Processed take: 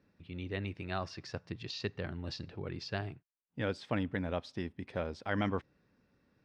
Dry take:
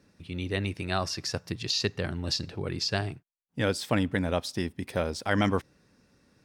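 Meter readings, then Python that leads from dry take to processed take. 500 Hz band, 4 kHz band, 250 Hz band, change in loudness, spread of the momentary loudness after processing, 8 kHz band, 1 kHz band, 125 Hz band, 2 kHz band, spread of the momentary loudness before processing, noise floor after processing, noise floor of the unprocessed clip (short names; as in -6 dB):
-7.5 dB, -13.5 dB, -7.5 dB, -8.5 dB, 9 LU, -20.0 dB, -7.5 dB, -7.5 dB, -8.0 dB, 8 LU, -78 dBFS, -70 dBFS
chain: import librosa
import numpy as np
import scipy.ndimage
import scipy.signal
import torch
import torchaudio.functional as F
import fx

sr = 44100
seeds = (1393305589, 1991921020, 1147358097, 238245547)

y = scipy.signal.sosfilt(scipy.signal.butter(2, 3300.0, 'lowpass', fs=sr, output='sos'), x)
y = y * 10.0 ** (-7.5 / 20.0)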